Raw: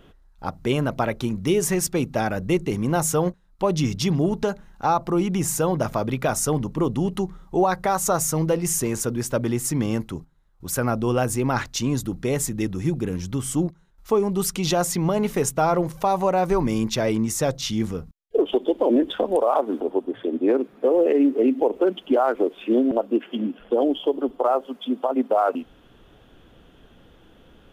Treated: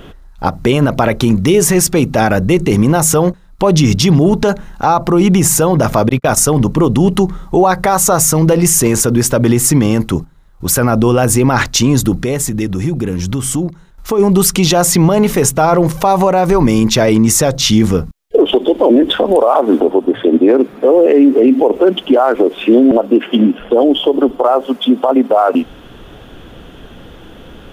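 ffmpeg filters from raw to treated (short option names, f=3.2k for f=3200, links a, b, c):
-filter_complex "[0:a]asettb=1/sr,asplit=3[a][b][c];[a]atrim=end=6.094[d];[b]atrim=start=6.09:end=6.66,asetpts=PTS-STARTPTS,afade=t=in:d=0.004:c=qsin,afade=t=out:st=0.566:d=0.004:c=qsin,agate=range=-46dB:threshold=-28dB:ratio=16:release=100:detection=peak[e];[c]atrim=start=6.656[f];[d][e]acrossfade=d=0.004:c1=hsin:c2=qsin[g];[g][f]acrossfade=d=0.004:c1=qsin:c2=hsin,asplit=3[h][i][j];[h]afade=t=out:st=12.19:d=0.02[k];[i]acompressor=threshold=-32dB:ratio=3:attack=3.2:release=140:knee=1:detection=peak,afade=t=in:st=12.19:d=0.02,afade=t=out:st=14.18:d=0.02[l];[j]afade=t=in:st=14.18:d=0.02[m];[k][l][m]amix=inputs=3:normalize=0,alimiter=level_in=17.5dB:limit=-1dB:release=50:level=0:latency=1,volume=-1dB"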